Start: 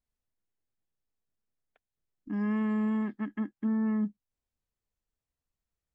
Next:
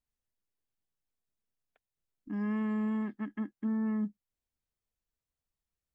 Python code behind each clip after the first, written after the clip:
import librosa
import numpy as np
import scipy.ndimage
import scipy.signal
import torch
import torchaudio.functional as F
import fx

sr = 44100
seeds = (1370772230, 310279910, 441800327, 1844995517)

y = fx.quant_float(x, sr, bits=8)
y = y * 10.0 ** (-3.0 / 20.0)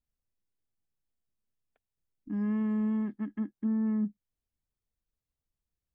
y = fx.low_shelf(x, sr, hz=460.0, db=10.0)
y = y * 10.0 ** (-5.5 / 20.0)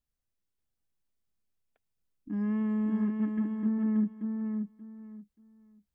y = fx.echo_feedback(x, sr, ms=581, feedback_pct=22, wet_db=-4.5)